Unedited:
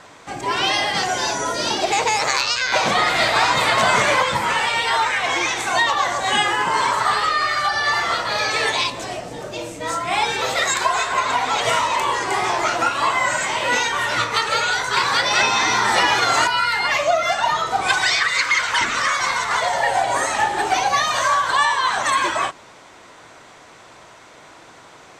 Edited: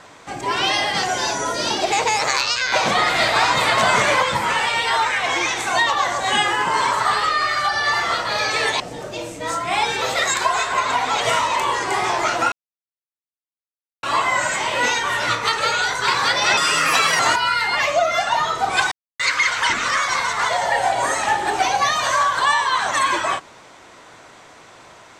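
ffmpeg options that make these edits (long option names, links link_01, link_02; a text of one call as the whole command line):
ffmpeg -i in.wav -filter_complex "[0:a]asplit=7[link_01][link_02][link_03][link_04][link_05][link_06][link_07];[link_01]atrim=end=8.802[link_08];[link_02]atrim=start=9.198:end=12.92,asetpts=PTS-STARTPTS,afade=type=out:start_time=3.718:duration=0.004:curve=hsin,apad=pad_dur=1.51[link_09];[link_03]atrim=start=12.92:end=15.464,asetpts=PTS-STARTPTS,afade=type=in:duration=0.004:curve=hsin[link_10];[link_04]atrim=start=15.46:end=16.31,asetpts=PTS-STARTPTS,asetrate=59976,aresample=44100,atrim=end_sample=27562,asetpts=PTS-STARTPTS[link_11];[link_05]atrim=start=16.306:end=18.03,asetpts=PTS-STARTPTS,afade=type=out:start_time=1.72:duration=0.004:curve=hsin[link_12];[link_06]atrim=start=18.03:end=18.31,asetpts=PTS-STARTPTS,volume=0[link_13];[link_07]atrim=start=18.31,asetpts=PTS-STARTPTS,afade=type=in:duration=0.004:curve=hsin[link_14];[link_09][link_10]concat=n=2:v=0:a=1[link_15];[link_08][link_15]acrossfade=duration=0.004:curve1=hsin:curve2=hsin[link_16];[link_16][link_11]acrossfade=duration=0.004:curve1=hsin:curve2=hsin[link_17];[link_12][link_13][link_14]concat=n=3:v=0:a=1[link_18];[link_17][link_18]acrossfade=duration=0.004:curve1=hsin:curve2=hsin" out.wav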